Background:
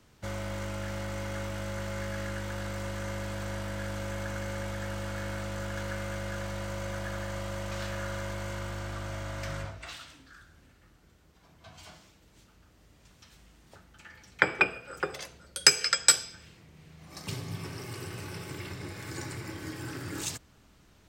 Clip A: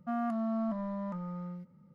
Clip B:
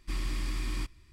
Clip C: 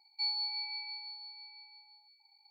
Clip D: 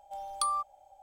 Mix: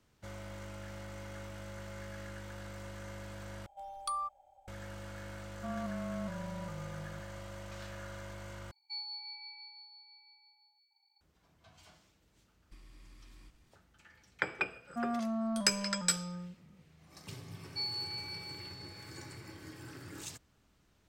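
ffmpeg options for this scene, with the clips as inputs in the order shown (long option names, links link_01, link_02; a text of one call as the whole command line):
ffmpeg -i bed.wav -i cue0.wav -i cue1.wav -i cue2.wav -i cue3.wav -filter_complex "[1:a]asplit=2[link_01][link_02];[3:a]asplit=2[link_03][link_04];[0:a]volume=-10dB[link_05];[4:a]bass=frequency=250:gain=3,treble=frequency=4000:gain=-5[link_06];[link_01]afreqshift=-22[link_07];[2:a]acompressor=threshold=-45dB:ratio=6:attack=48:release=137:knee=1:detection=peak[link_08];[link_05]asplit=3[link_09][link_10][link_11];[link_09]atrim=end=3.664[link_12];[link_06]atrim=end=1.02,asetpts=PTS-STARTPTS,volume=-5.5dB[link_13];[link_10]atrim=start=4.676:end=8.714[link_14];[link_03]atrim=end=2.5,asetpts=PTS-STARTPTS,volume=-8dB[link_15];[link_11]atrim=start=11.206[link_16];[link_07]atrim=end=1.94,asetpts=PTS-STARTPTS,volume=-6.5dB,afade=type=in:duration=0.004:curve=hsin,afade=type=out:start_time=1.936:duration=0.004:curve=hsin,adelay=5560[link_17];[link_08]atrim=end=1.12,asetpts=PTS-STARTPTS,volume=-11.5dB,afade=type=in:duration=0.1,afade=type=out:start_time=1.02:duration=0.1,adelay=12640[link_18];[link_02]atrim=end=1.94,asetpts=PTS-STARTPTS,volume=-2dB,afade=type=in:duration=0.004:curve=hsin,afade=type=out:start_time=1.936:duration=0.004:curve=hsin,adelay=14890[link_19];[link_04]atrim=end=2.5,asetpts=PTS-STARTPTS,volume=-3.5dB,afade=type=in:duration=0.004:curve=hsin,afade=type=out:start_time=2.496:duration=0.004:curve=hsin,adelay=17570[link_20];[link_12][link_13]acrossfade=duration=0.004:curve1=hsin:curve2=hsin[link_21];[link_21][link_14]acrossfade=duration=0.004:curve1=hsin:curve2=hsin[link_22];[link_22][link_15]acrossfade=duration=0.004:curve1=hsin:curve2=hsin[link_23];[link_23][link_16]acrossfade=duration=0.004:curve1=hsin:curve2=hsin[link_24];[link_24][link_17][link_18][link_19][link_20]amix=inputs=5:normalize=0" out.wav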